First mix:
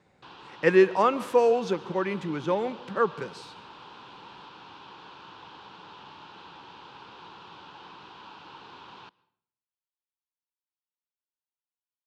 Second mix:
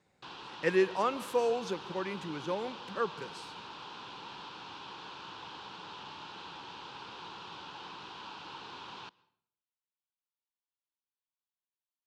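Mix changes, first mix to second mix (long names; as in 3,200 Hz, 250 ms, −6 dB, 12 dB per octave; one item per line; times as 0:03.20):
speech −8.5 dB
master: add high-shelf EQ 4,600 Hz +10 dB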